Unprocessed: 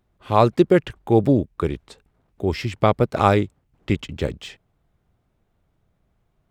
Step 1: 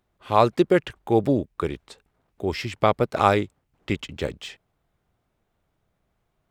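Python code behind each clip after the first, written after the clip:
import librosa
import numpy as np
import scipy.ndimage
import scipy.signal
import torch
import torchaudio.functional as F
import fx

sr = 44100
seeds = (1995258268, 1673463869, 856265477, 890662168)

y = fx.low_shelf(x, sr, hz=320.0, db=-7.5)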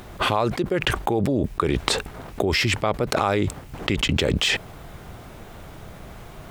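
y = fx.env_flatten(x, sr, amount_pct=100)
y = y * librosa.db_to_amplitude(-7.5)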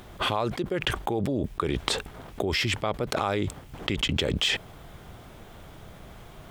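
y = fx.peak_eq(x, sr, hz=3300.0, db=5.0, octaves=0.21)
y = y * librosa.db_to_amplitude(-5.5)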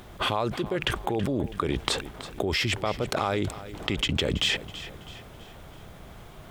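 y = fx.echo_feedback(x, sr, ms=327, feedback_pct=45, wet_db=-15)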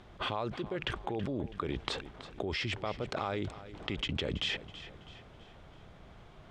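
y = scipy.signal.sosfilt(scipy.signal.butter(2, 4900.0, 'lowpass', fs=sr, output='sos'), x)
y = y * librosa.db_to_amplitude(-8.0)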